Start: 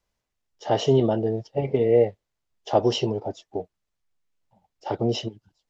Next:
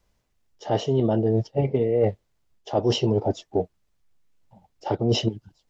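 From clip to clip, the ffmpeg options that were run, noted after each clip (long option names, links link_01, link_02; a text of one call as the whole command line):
ffmpeg -i in.wav -af "lowshelf=frequency=400:gain=6.5,areverse,acompressor=threshold=-23dB:ratio=12,areverse,volume=5.5dB" out.wav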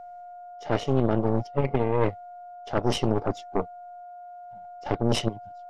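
ffmpeg -i in.wav -af "equalizer=frequency=2100:width=4:gain=9.5,aeval=exprs='val(0)+0.0178*sin(2*PI*710*n/s)':channel_layout=same,aeval=exprs='0.376*(cos(1*acos(clip(val(0)/0.376,-1,1)))-cos(1*PI/2))+0.133*(cos(4*acos(clip(val(0)/0.376,-1,1)))-cos(4*PI/2))':channel_layout=same,volume=-5dB" out.wav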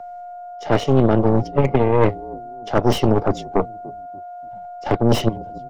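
ffmpeg -i in.wav -filter_complex "[0:a]acrossover=split=120|810|1600[link_01][link_02][link_03][link_04];[link_02]asplit=4[link_05][link_06][link_07][link_08];[link_06]adelay=291,afreqshift=-48,volume=-17.5dB[link_09];[link_07]adelay=582,afreqshift=-96,volume=-25.9dB[link_10];[link_08]adelay=873,afreqshift=-144,volume=-34.3dB[link_11];[link_05][link_09][link_10][link_11]amix=inputs=4:normalize=0[link_12];[link_04]asoftclip=type=hard:threshold=-33dB[link_13];[link_01][link_12][link_03][link_13]amix=inputs=4:normalize=0,volume=8dB" out.wav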